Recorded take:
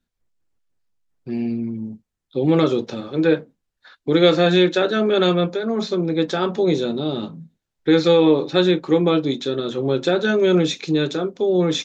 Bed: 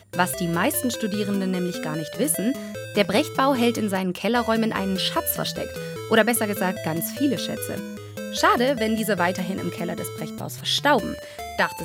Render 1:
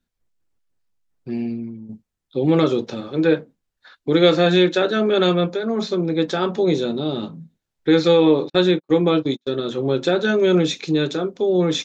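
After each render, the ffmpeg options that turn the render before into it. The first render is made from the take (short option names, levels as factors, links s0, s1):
-filter_complex "[0:a]asplit=3[s0][s1][s2];[s0]afade=t=out:st=8.48:d=0.02[s3];[s1]agate=range=0.00501:threshold=0.0562:ratio=16:release=100:detection=peak,afade=t=in:st=8.48:d=0.02,afade=t=out:st=9.48:d=0.02[s4];[s2]afade=t=in:st=9.48:d=0.02[s5];[s3][s4][s5]amix=inputs=3:normalize=0,asplit=2[s6][s7];[s6]atrim=end=1.89,asetpts=PTS-STARTPTS,afade=t=out:st=1.31:d=0.58:silence=0.298538[s8];[s7]atrim=start=1.89,asetpts=PTS-STARTPTS,afade=t=in:d=0.004:c=hsin:silence=0.298538[s9];[s8][s9]concat=n=2:v=0:a=1"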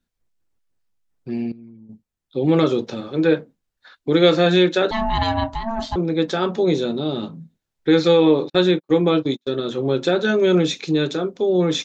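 -filter_complex "[0:a]asettb=1/sr,asplit=3[s0][s1][s2];[s0]atrim=end=4.914[s3];[s1]atrim=start=4.91:end=5.96,asetpts=PTS-STARTPTS,afade=t=in:d=0.004:c=qsin,afade=t=out:st=1.046:d=0.004:c=qsin,aeval=exprs='val(0)*sin(2*PI*450*n/s)':c=same[s4];[s2]atrim=start=5.956[s5];[s3][s4]acrossfade=d=0.004:c1=hsin:c2=qsin[s6];[s6][s5]acrossfade=d=0.004:c1=qsin:c2=hsin,asplit=2[s7][s8];[s7]atrim=end=1.52,asetpts=PTS-STARTPTS,afade=t=out:st=1.516:d=0.004:c=hsin:silence=0.149624[s9];[s8]atrim=start=1.52,asetpts=PTS-STARTPTS,afade=t=in:d=0.98:silence=0.149624[s10];[s9][s10]concat=n=2:v=0:a=1"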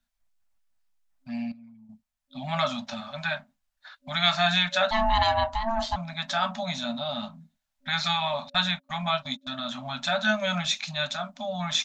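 -af "equalizer=f=130:t=o:w=1.5:g=-14,afftfilt=real='re*(1-between(b*sr/4096,260,560))':imag='im*(1-between(b*sr/4096,260,560))':win_size=4096:overlap=0.75"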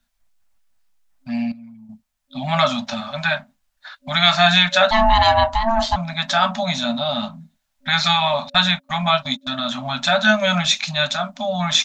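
-af "volume=2.82,alimiter=limit=0.794:level=0:latency=1"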